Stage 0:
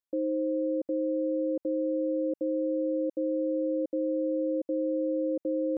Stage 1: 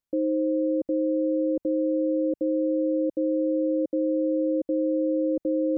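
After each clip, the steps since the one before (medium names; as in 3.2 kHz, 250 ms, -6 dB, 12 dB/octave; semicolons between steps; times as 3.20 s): bass shelf 210 Hz +12 dB; trim +1.5 dB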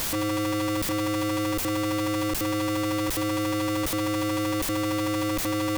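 one-bit comparator; trim -1.5 dB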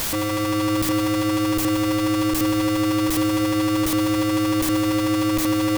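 reverberation RT60 5.1 s, pre-delay 82 ms, DRR 8 dB; trim +3.5 dB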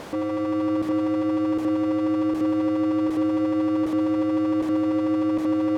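band-pass filter 430 Hz, Q 0.85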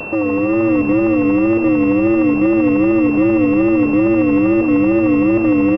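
wow and flutter 120 cents; frequency-shifting echo 116 ms, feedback 42%, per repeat -96 Hz, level -12.5 dB; class-D stage that switches slowly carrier 2.7 kHz; trim +9 dB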